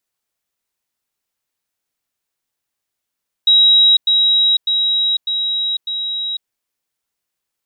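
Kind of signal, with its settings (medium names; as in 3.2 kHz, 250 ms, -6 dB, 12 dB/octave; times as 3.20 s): level ladder 3.84 kHz -7 dBFS, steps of -3 dB, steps 5, 0.50 s 0.10 s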